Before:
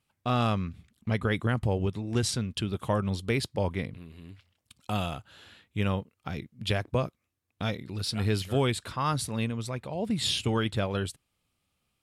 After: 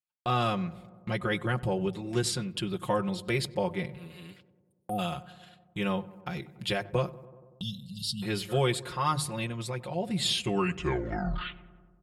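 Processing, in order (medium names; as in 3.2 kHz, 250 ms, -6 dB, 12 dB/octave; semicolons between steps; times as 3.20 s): tape stop on the ending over 1.67 s; hum notches 50/100/150 Hz; time-frequency box 4.54–4.99 s, 810–8500 Hz -26 dB; band-stop 5.9 kHz, Q 12; spectral selection erased 7.39–8.22 s, 260–2700 Hz; gate -50 dBFS, range -31 dB; peaking EQ 220 Hz -7.5 dB 0.22 oct; comb 5.6 ms, depth 98%; on a send: filtered feedback delay 95 ms, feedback 71%, low-pass 1.3 kHz, level -18 dB; on the sum: tape noise reduction on one side only encoder only; trim -2.5 dB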